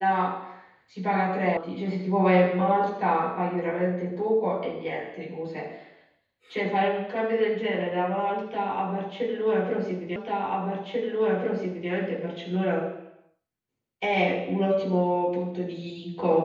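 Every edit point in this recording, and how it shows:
1.57 sound cut off
10.16 repeat of the last 1.74 s

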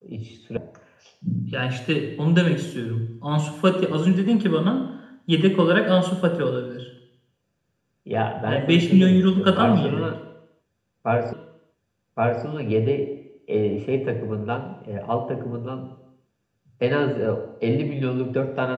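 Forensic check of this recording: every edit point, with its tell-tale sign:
0.57 sound cut off
11.33 repeat of the last 1.12 s

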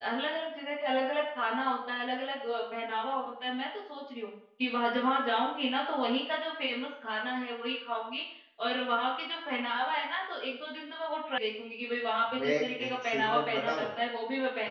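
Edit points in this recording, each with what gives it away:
11.38 sound cut off

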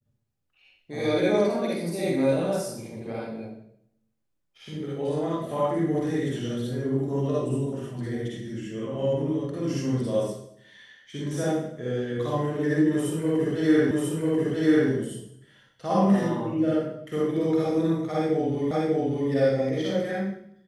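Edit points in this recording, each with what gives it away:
13.91 repeat of the last 0.99 s
18.71 repeat of the last 0.59 s

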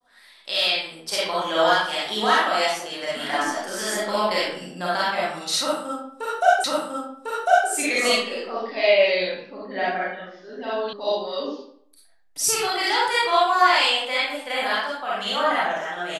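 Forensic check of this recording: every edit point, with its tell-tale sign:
6.64 repeat of the last 1.05 s
10.93 sound cut off

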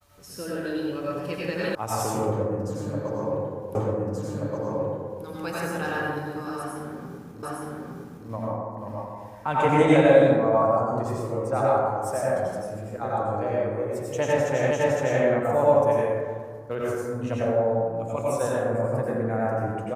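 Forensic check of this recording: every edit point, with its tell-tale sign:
1.75 sound cut off
3.75 repeat of the last 1.48 s
7.43 repeat of the last 0.86 s
14.71 repeat of the last 0.51 s

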